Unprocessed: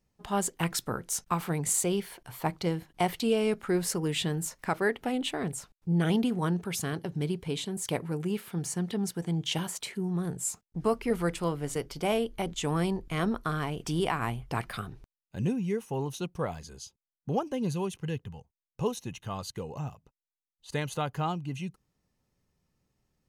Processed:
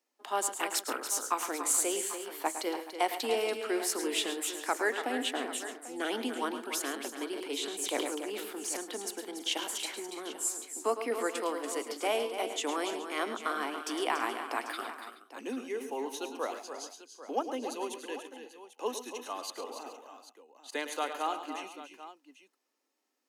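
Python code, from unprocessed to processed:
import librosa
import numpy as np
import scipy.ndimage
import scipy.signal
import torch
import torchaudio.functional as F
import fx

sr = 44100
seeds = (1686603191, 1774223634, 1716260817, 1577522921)

p1 = scipy.signal.sosfilt(scipy.signal.butter(12, 260.0, 'highpass', fs=sr, output='sos'), x)
p2 = fx.peak_eq(p1, sr, hz=390.0, db=-4.5, octaves=0.95)
p3 = p2 + fx.echo_multitap(p2, sr, ms=(108, 137, 286, 331, 425, 792), db=(-10.5, -17.5, -9.5, -17.5, -18.5, -14.5), dry=0)
y = fx.sustainer(p3, sr, db_per_s=41.0, at=(7.31, 8.77))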